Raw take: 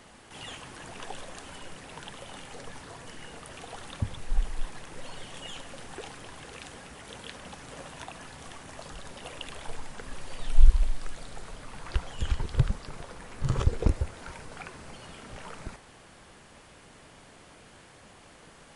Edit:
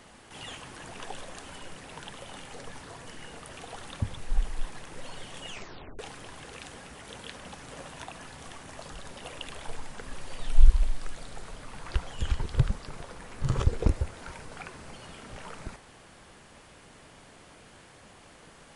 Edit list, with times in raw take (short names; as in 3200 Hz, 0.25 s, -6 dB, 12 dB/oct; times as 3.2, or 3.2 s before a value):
5.48 tape stop 0.51 s